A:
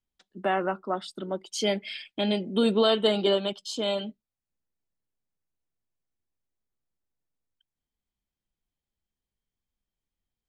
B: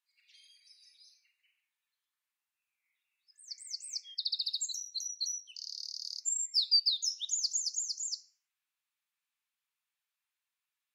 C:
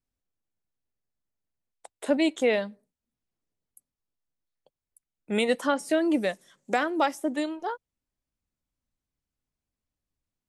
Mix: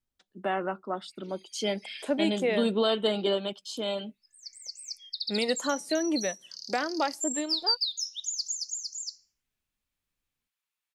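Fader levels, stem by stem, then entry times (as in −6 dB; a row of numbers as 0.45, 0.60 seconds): −3.5, 0.0, −4.0 decibels; 0.00, 0.95, 0.00 seconds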